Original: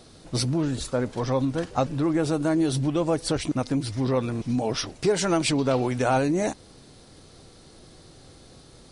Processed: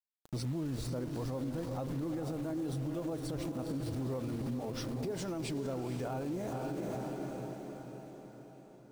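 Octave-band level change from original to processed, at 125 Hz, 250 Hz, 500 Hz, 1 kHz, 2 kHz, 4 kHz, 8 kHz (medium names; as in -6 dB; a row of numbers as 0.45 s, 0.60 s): -9.5 dB, -11.5 dB, -13.0 dB, -15.0 dB, -16.5 dB, -16.5 dB, -16.0 dB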